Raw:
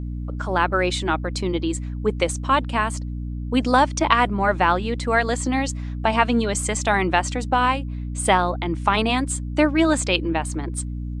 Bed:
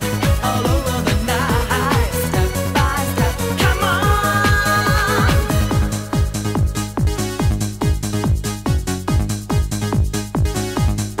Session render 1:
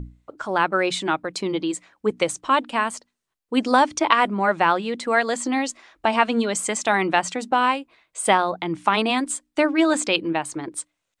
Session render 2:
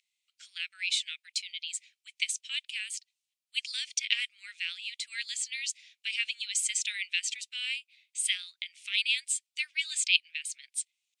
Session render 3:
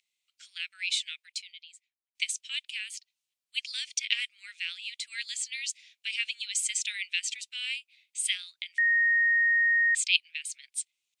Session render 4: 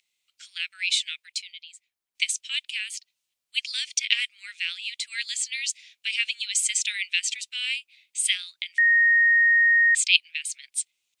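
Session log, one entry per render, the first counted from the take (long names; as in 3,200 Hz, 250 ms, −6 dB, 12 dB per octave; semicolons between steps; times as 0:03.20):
mains-hum notches 60/120/180/240/300 Hz
Butterworth high-pass 2,300 Hz 48 dB per octave; high-shelf EQ 11,000 Hz −7 dB
0:01.10–0:02.15: fade out and dull; 0:02.74–0:03.76: dynamic equaliser 8,200 Hz, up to −6 dB, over −55 dBFS; 0:08.78–0:09.95: beep over 1,860 Hz −20.5 dBFS
level +5.5 dB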